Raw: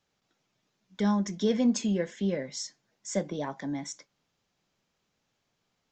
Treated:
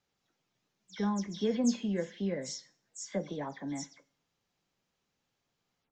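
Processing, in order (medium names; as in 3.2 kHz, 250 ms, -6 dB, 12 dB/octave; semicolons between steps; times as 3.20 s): delay that grows with frequency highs early, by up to 111 ms; Schroeder reverb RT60 0.52 s, combs from 26 ms, DRR 19.5 dB; trim -4 dB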